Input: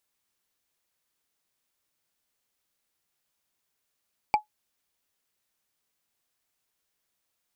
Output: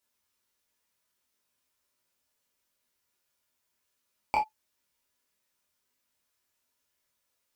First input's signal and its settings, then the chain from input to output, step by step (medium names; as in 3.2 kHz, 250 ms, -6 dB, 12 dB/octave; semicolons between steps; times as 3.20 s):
wood hit, lowest mode 848 Hz, decay 0.12 s, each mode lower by 7.5 dB, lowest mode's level -13 dB
chorus 1.5 Hz, delay 19.5 ms, depth 6.8 ms; gated-style reverb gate 80 ms falling, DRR -1.5 dB